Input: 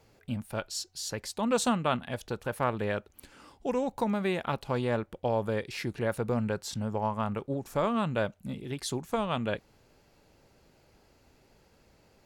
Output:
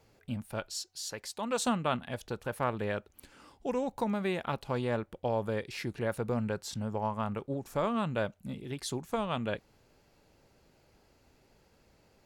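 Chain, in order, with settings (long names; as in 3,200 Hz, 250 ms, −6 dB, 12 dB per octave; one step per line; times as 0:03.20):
0:00.75–0:01.65: low-shelf EQ 300 Hz −9.5 dB
level −2.5 dB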